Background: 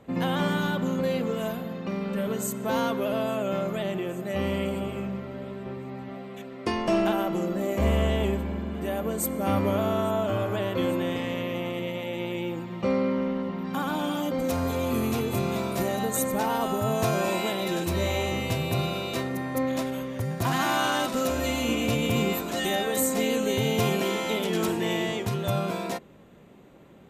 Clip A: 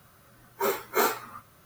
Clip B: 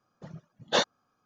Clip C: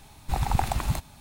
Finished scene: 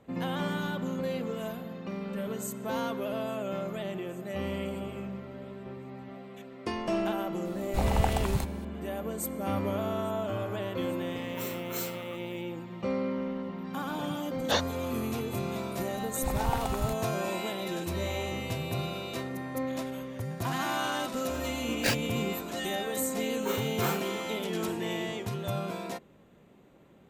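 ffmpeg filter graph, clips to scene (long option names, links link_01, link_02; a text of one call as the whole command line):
ffmpeg -i bed.wav -i cue0.wav -i cue1.wav -i cue2.wav -filter_complex "[3:a]asplit=2[link_01][link_02];[1:a]asplit=2[link_03][link_04];[2:a]asplit=2[link_05][link_06];[0:a]volume=-6dB[link_07];[link_03]acrossover=split=160|3000[link_08][link_09][link_10];[link_09]acompressor=threshold=-37dB:ratio=6:attack=3.2:release=140:knee=2.83:detection=peak[link_11];[link_08][link_11][link_10]amix=inputs=3:normalize=0[link_12];[link_05]acompressor=mode=upward:threshold=-27dB:ratio=2.5:attack=3.2:release=140:knee=2.83:detection=peak[link_13];[link_06]aeval=exprs='val(0)*sgn(sin(2*PI*1100*n/s))':channel_layout=same[link_14];[link_01]atrim=end=1.2,asetpts=PTS-STARTPTS,volume=-3dB,afade=type=in:duration=0.004:curve=hsin,afade=type=out:start_time=1.196:duration=0.004:curve=hsin,adelay=7450[link_15];[link_12]atrim=end=1.65,asetpts=PTS-STARTPTS,volume=-5.5dB,afade=type=in:duration=0.004:curve=hsin,afade=type=out:start_time=1.646:duration=0.004:curve=hsin,adelay=10770[link_16];[link_13]atrim=end=1.25,asetpts=PTS-STARTPTS,volume=-3dB,afade=type=in:duration=0.004:curve=hsin,afade=type=out:start_time=1.246:duration=0.004:curve=hsin,adelay=13770[link_17];[link_02]atrim=end=1.2,asetpts=PTS-STARTPTS,volume=-6dB,afade=type=in:duration=0.004:curve=hsin,afade=type=out:start_time=1.196:duration=0.004:curve=hsin,adelay=15940[link_18];[link_14]atrim=end=1.25,asetpts=PTS-STARTPTS,volume=-4.5dB,afade=type=in:duration=0.004:curve=hsin,afade=type=out:start_time=1.246:duration=0.004:curve=hsin,adelay=21110[link_19];[link_04]atrim=end=1.65,asetpts=PTS-STARTPTS,volume=-8dB,afade=type=in:duration=0.004:curve=hsin,afade=type=out:start_time=1.646:duration=0.004:curve=hsin,adelay=22850[link_20];[link_07][link_15][link_16][link_17][link_18][link_19][link_20]amix=inputs=7:normalize=0" out.wav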